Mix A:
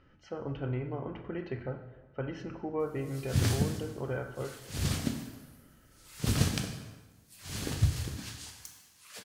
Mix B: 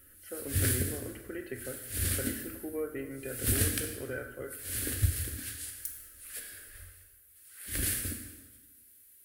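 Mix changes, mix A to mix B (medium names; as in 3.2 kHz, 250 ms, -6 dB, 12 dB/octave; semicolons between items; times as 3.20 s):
background: entry -2.80 s; master: add FFT filter 100 Hz 0 dB, 160 Hz -20 dB, 250 Hz -1 dB, 560 Hz -3 dB, 940 Hz -18 dB, 1.6 kHz +5 dB, 2.5 kHz -1 dB, 6.4 kHz -4 dB, 10 kHz +14 dB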